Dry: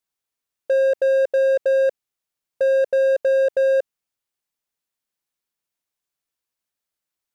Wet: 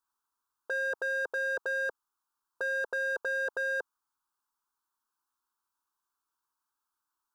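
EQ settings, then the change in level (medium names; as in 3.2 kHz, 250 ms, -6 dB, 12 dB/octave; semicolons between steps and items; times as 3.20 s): high-order bell 1.2 kHz +14 dB 1.1 oct; static phaser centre 560 Hz, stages 6; -2.5 dB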